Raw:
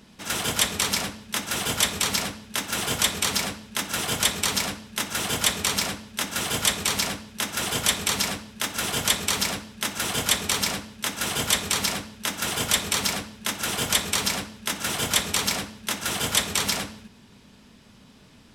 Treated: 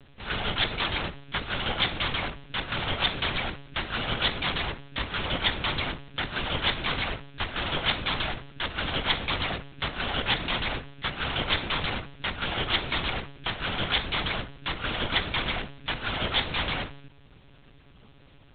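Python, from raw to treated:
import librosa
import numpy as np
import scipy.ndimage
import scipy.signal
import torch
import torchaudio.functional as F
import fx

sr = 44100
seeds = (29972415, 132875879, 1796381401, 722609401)

y = scipy.signal.sosfilt(scipy.signal.butter(2, 110.0, 'highpass', fs=sr, output='sos'), x)
y = fx.lpc_monotone(y, sr, seeds[0], pitch_hz=140.0, order=10)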